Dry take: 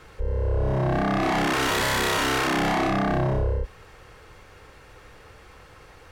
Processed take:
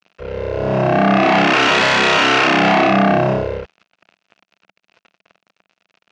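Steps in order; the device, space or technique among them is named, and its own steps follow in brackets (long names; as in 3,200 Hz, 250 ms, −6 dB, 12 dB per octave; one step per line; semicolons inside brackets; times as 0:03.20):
blown loudspeaker (dead-zone distortion −41 dBFS; loudspeaker in its box 160–6,000 Hz, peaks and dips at 190 Hz +6 dB, 670 Hz +6 dB, 1,400 Hz +4 dB, 2,600 Hz +9 dB)
level +8.5 dB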